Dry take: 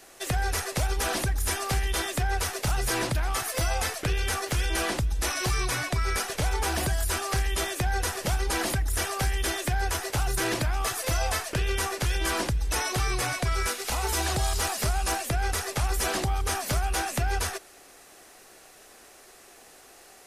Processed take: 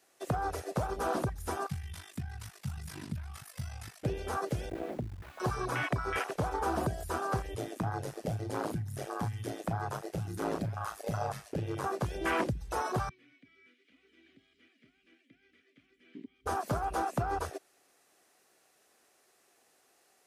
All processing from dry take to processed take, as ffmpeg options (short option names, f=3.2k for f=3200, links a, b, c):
-filter_complex "[0:a]asettb=1/sr,asplit=3[a][b][c];[a]atrim=end=1.674[d];[b]atrim=start=1.67:end=4.04,asetpts=PTS-STARTPTS,afade=t=in:d=0.004:c=qsin,afade=t=out:st=2.366:d=0.004:c=qsin,equalizer=f=450:w=1.2:g=-11,bandreject=f=6.5k:w=25,aeval=exprs='val(0)*sin(2*PI*25*n/s)':c=same[e];[c]atrim=start=4.036[f];[d][e]acrossfade=d=0.004:c1=hsin:c2=qsin[g];[g][f]acrossfade=d=0.004:c1=qsin:c2=hsin,asettb=1/sr,asplit=3[h][i][j];[h]atrim=end=4.694[k];[i]atrim=start=4.69:end=5.4,asetpts=PTS-STARTPTS,afade=t=in:d=0.004:c=qsin,afade=t=out:st=0.706:d=0.004:c=qsin,lowpass=f=2.3k:w=0.5412,lowpass=f=2.3k:w=1.3066,acrusher=bits=4:dc=4:mix=0:aa=0.000001[l];[j]atrim=start=5.396[m];[k][l]acrossfade=d=0.004:c1=hsin:c2=qsin[n];[n][m]acrossfade=d=0.004:c1=qsin:c2=hsin,asettb=1/sr,asplit=3[o][p][q];[o]atrim=end=7.544[r];[p]atrim=start=7.54:end=11.84,asetpts=PTS-STARTPTS,afade=t=in:d=0.004:c=qsin,afade=t=out:st=4.296:d=0.004:c=qsin,aeval=exprs='val(0)*sin(2*PI*53*n/s)':c=same,asplit=2[s][t];[t]adelay=35,volume=-12dB[u];[s][u]amix=inputs=2:normalize=0,atrim=end_sample=189630[v];[q]atrim=start=11.836[w];[r][v]acrossfade=d=0.004:c1=hsin:c2=qsin[x];[x][w]acrossfade=d=0.004:c1=qsin:c2=hsin,asettb=1/sr,asplit=3[y][z][aa];[y]atrim=end=13.094[ab];[z]atrim=start=13.09:end=16.46,asetpts=PTS-STARTPTS,afade=t=in:d=0.004:c=qsin,afade=t=out:st=3.366:d=0.004:c=qsin,bandreject=f=2.2k:w=26,acrossover=split=3100[ac][ad];[ad]acompressor=threshold=-44dB:ratio=4:attack=1:release=60[ae];[ac][ae]amix=inputs=2:normalize=0,asplit=3[af][ag][ah];[af]bandpass=f=270:t=q:w=8,volume=0dB[ai];[ag]bandpass=f=2.29k:t=q:w=8,volume=-6dB[aj];[ah]bandpass=f=3.01k:t=q:w=8,volume=-9dB[ak];[ai][aj][ak]amix=inputs=3:normalize=0[al];[aa]atrim=start=16.456[am];[ab][al]acrossfade=d=0.004:c1=hsin:c2=qsin[an];[an][am]acrossfade=d=0.004:c1=qsin:c2=hsin,afwtdn=0.0355,highpass=120"